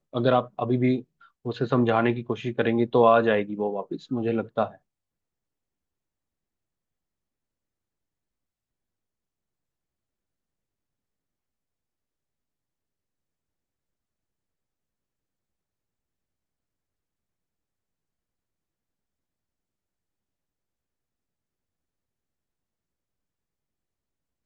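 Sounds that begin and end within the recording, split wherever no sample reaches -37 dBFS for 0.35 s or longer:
1.45–4.75 s

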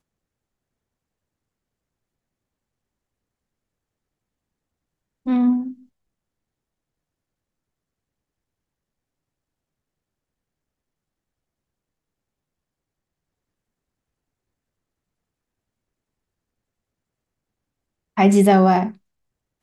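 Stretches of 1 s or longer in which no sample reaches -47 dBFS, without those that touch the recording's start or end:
5.84–18.17 s

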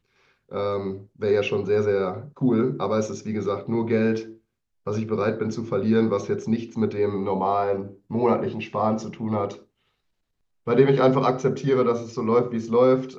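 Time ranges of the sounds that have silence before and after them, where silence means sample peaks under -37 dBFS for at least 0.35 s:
0.52–4.32 s
4.87–9.57 s

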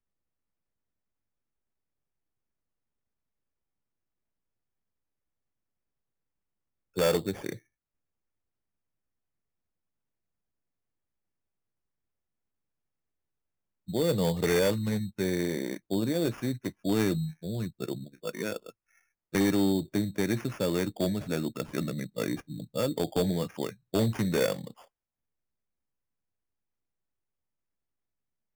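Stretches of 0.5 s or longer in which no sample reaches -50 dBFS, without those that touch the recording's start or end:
7.59–13.88 s
18.70–19.33 s

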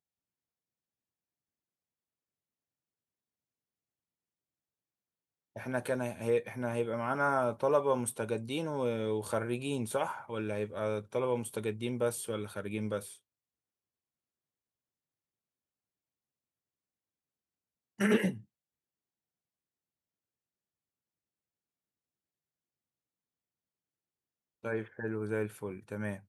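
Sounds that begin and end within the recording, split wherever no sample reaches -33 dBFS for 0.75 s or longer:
5.57–12.99 s
18.00–18.31 s

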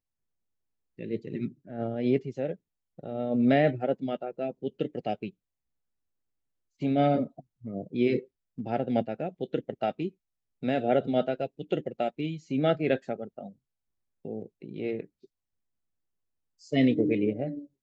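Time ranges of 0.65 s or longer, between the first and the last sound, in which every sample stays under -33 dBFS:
5.28–6.82 s
13.46–14.25 s
15.01–16.73 s

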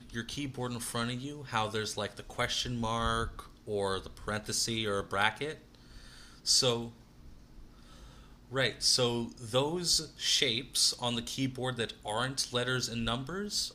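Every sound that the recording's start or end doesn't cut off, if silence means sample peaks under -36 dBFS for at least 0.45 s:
6.47–6.88 s

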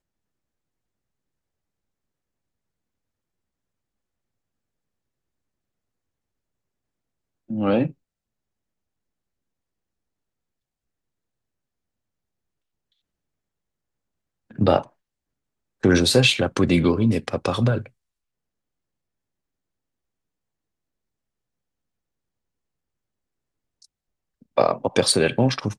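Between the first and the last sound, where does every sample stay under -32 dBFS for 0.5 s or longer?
7.90–14.59 s
14.82–15.83 s
17.86–24.57 s

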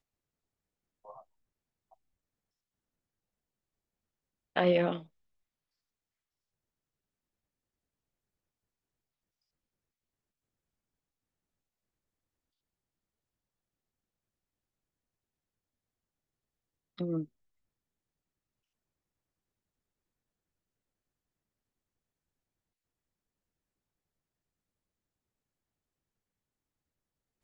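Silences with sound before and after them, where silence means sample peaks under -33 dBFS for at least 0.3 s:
4.97–17.00 s

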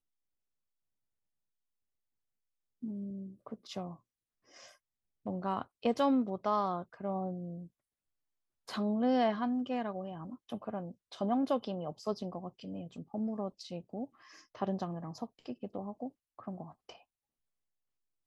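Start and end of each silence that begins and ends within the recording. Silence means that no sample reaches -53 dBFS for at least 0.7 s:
7.67–8.68 s

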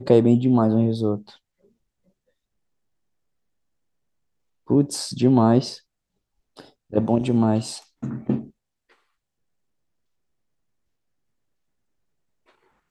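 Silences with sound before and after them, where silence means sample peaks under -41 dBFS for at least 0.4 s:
1.35–4.68 s
5.77–6.57 s

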